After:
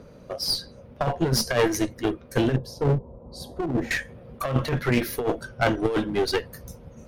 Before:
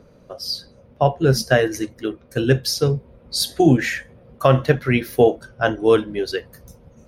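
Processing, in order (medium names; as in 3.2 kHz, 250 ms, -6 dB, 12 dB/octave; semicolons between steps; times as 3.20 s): 2.56–3.91 s: FFT filter 260 Hz 0 dB, 1 kHz +3 dB, 1.7 kHz -23 dB; compressor with a negative ratio -17 dBFS, ratio -0.5; one-sided clip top -26 dBFS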